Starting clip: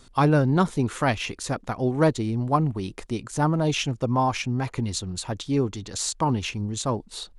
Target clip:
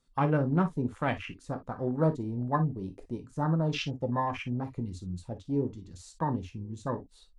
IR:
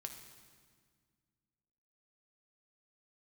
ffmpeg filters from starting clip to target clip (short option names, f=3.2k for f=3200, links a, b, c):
-filter_complex "[0:a]afwtdn=0.0316[a];[1:a]atrim=start_sample=2205,atrim=end_sample=3528,asetrate=57330,aresample=44100[b];[a][b]afir=irnorm=-1:irlink=0"